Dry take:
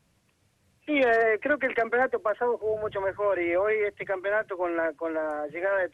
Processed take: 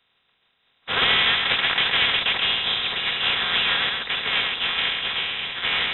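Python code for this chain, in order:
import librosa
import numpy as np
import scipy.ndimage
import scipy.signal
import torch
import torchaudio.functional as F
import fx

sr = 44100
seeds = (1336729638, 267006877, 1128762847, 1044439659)

y = fx.spec_flatten(x, sr, power=0.26)
y = scipy.signal.sosfilt(scipy.signal.butter(2, 58.0, 'highpass', fs=sr, output='sos'), y)
y = fx.air_absorb(y, sr, metres=220.0)
y = fx.notch_comb(y, sr, f0_hz=290.0)
y = fx.freq_invert(y, sr, carrier_hz=3800)
y = y + 10.0 ** (-9.5 / 20.0) * np.pad(y, (int(133 * sr / 1000.0), 0))[:len(y)]
y = fx.sustainer(y, sr, db_per_s=39.0)
y = y * 10.0 ** (6.5 / 20.0)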